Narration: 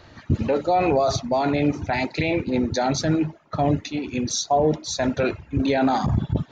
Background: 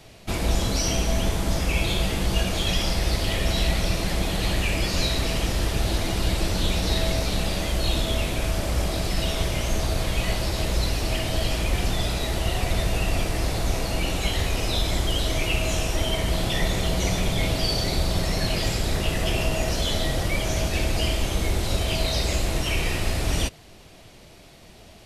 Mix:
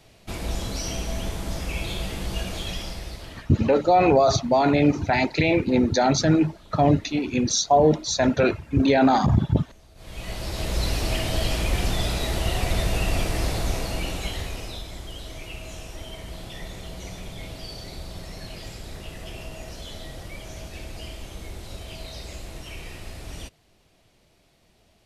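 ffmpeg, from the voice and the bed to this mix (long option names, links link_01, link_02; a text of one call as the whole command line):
ffmpeg -i stem1.wav -i stem2.wav -filter_complex "[0:a]adelay=3200,volume=2.5dB[link_01];[1:a]volume=22dB,afade=type=out:start_time=2.54:duration=0.96:silence=0.0794328,afade=type=in:start_time=9.95:duration=0.99:silence=0.0398107,afade=type=out:start_time=13.44:duration=1.43:silence=0.211349[link_02];[link_01][link_02]amix=inputs=2:normalize=0" out.wav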